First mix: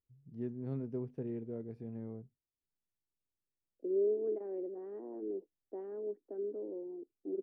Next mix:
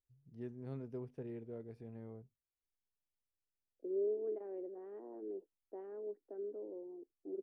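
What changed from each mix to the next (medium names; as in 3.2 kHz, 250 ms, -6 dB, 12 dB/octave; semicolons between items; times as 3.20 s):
first voice: add treble shelf 3.9 kHz +6 dB; master: add peaking EQ 210 Hz -8 dB 2.2 oct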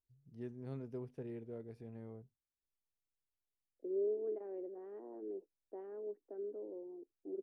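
first voice: add treble shelf 3.9 kHz +5 dB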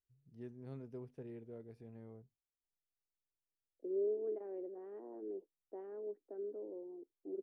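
first voice -3.5 dB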